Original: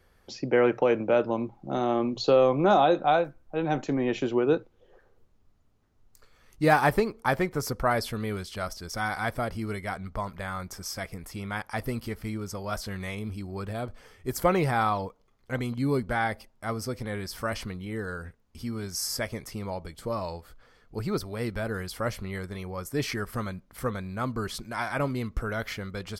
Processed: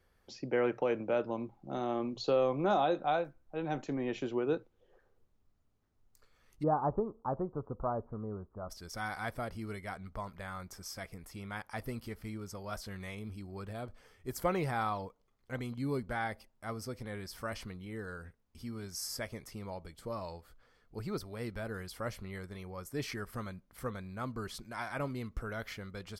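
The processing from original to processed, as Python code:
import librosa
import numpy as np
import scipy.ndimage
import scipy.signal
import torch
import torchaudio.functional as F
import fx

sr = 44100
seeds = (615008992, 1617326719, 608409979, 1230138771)

y = fx.steep_lowpass(x, sr, hz=1200.0, slope=48, at=(6.62, 8.69), fade=0.02)
y = y * librosa.db_to_amplitude(-8.5)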